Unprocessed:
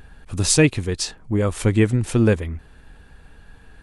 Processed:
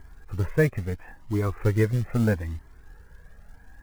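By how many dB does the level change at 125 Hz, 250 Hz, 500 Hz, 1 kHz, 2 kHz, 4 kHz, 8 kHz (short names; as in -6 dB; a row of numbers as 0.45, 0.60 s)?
-4.0, -7.5, -5.5, -4.5, -6.0, -21.0, -24.0 dB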